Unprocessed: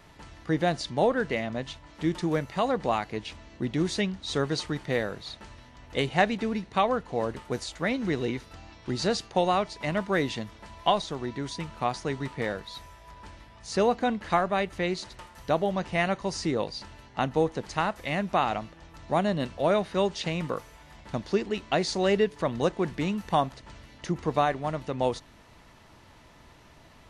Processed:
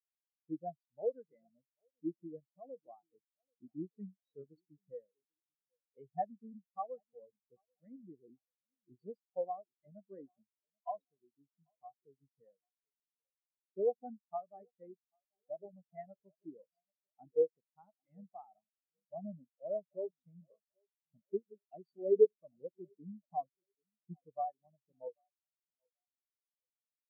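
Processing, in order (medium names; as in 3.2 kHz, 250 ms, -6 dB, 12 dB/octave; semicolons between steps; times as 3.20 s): tape echo 787 ms, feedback 57%, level -10 dB; spectral contrast expander 4:1; trim -6 dB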